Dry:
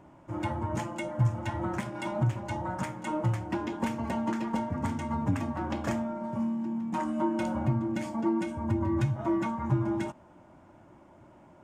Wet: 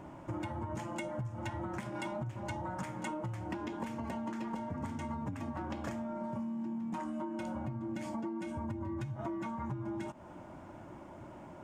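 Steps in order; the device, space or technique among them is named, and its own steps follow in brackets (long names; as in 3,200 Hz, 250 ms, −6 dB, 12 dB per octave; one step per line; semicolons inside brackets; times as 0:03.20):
serial compression, leveller first (downward compressor 2.5 to 1, threshold −31 dBFS, peak gain reduction 7.5 dB; downward compressor 6 to 1, threshold −42 dBFS, peak gain reduction 14.5 dB)
level +5.5 dB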